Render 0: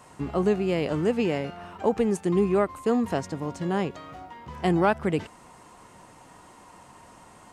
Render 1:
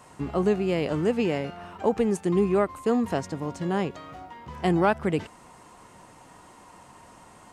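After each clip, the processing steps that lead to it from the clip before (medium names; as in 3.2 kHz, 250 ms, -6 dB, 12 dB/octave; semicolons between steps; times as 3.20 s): no audible change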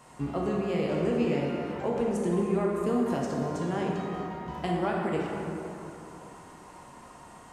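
compression 3:1, threshold -26 dBFS, peak gain reduction 8 dB; plate-style reverb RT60 3.2 s, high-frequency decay 0.5×, DRR -2.5 dB; trim -3.5 dB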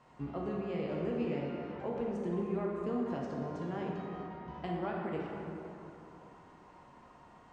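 distance through air 150 m; trim -7.5 dB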